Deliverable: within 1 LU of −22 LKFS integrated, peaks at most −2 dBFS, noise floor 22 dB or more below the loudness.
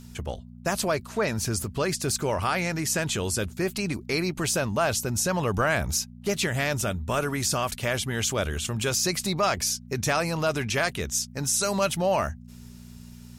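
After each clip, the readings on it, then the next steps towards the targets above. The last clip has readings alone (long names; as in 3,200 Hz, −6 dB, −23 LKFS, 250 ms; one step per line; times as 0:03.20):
mains hum 60 Hz; hum harmonics up to 240 Hz; level of the hum −41 dBFS; integrated loudness −26.5 LKFS; sample peak −11.5 dBFS; target loudness −22.0 LKFS
→ hum removal 60 Hz, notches 4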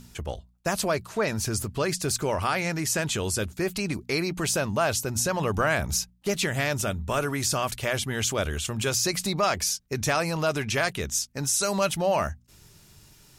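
mains hum none found; integrated loudness −26.5 LKFS; sample peak −11.5 dBFS; target loudness −22.0 LKFS
→ level +4.5 dB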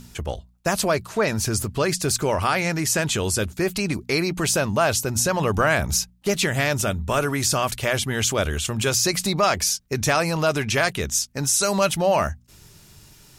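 integrated loudness −22.0 LKFS; sample peak −7.0 dBFS; background noise floor −51 dBFS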